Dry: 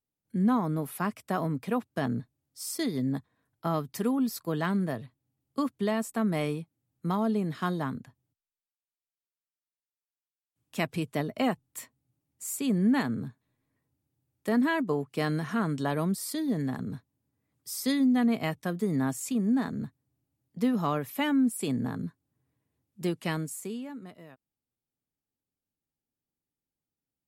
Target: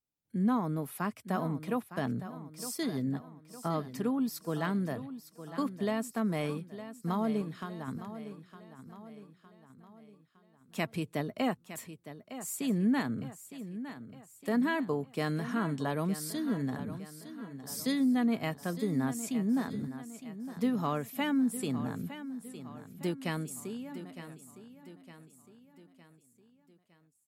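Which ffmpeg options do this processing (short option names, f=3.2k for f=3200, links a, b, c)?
-filter_complex "[0:a]asettb=1/sr,asplit=3[a][b][c];[a]atrim=end=3.144[d];[b]atrim=start=3.14:end=4.19,asetpts=PTS-STARTPTS,afade=t=in:d=0.004:c=qsin,afade=t=out:st=1.046:d=0.004:c=qsin,highshelf=f=6.7k:g=-9[e];[c]atrim=start=4.186[f];[d][e]acrossfade=d=0.004:c1=hsin:c2=qsin[g];[g][f]acrossfade=d=0.004:c1=qsin:c2=hsin,asettb=1/sr,asplit=3[h][i][j];[h]atrim=end=7.414[k];[i]atrim=start=7.41:end=7.88,asetpts=PTS-STARTPTS,afade=t=in:d=0.004:c=qsin,afade=t=out:st=0.466:d=0.004:c=qsin,acompressor=threshold=-34dB:ratio=5[l];[j]atrim=start=7.876[m];[k][l]acrossfade=d=0.004:c1=hsin:c2=qsin[n];[n][m]acrossfade=d=0.004:c1=qsin:c2=hsin,aecho=1:1:910|1820|2730|3640|4550:0.237|0.114|0.0546|0.0262|0.0126,volume=-3.5dB"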